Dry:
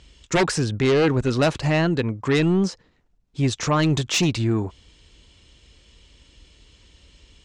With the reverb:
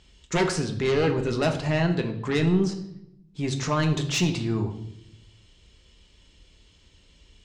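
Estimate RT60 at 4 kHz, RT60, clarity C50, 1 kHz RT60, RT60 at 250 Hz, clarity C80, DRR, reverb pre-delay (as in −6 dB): 0.65 s, 0.75 s, 10.0 dB, 0.65 s, 1.1 s, 13.0 dB, 4.0 dB, 5 ms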